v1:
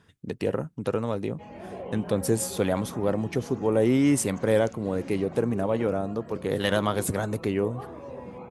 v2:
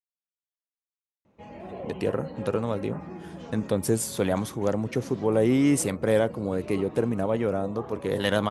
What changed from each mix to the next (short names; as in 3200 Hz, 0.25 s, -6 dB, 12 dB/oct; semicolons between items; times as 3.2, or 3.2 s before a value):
speech: entry +1.60 s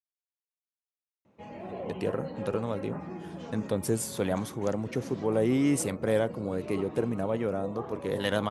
speech -4.0 dB; background: add HPF 86 Hz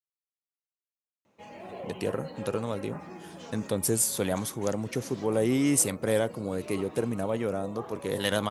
background: add low shelf 350 Hz -8 dB; master: add high shelf 4600 Hz +12 dB